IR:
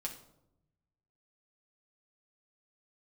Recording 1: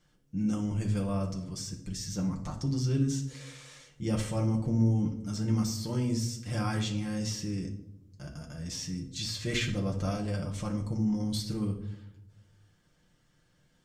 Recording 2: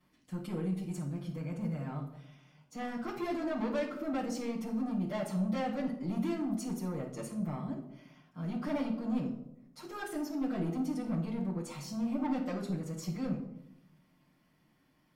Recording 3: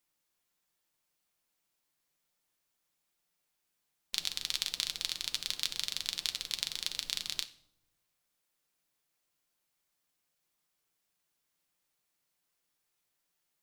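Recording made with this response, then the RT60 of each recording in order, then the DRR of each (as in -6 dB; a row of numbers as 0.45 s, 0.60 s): 1; 0.85 s, 0.85 s, no single decay rate; -1.0 dB, -10.5 dB, 7.5 dB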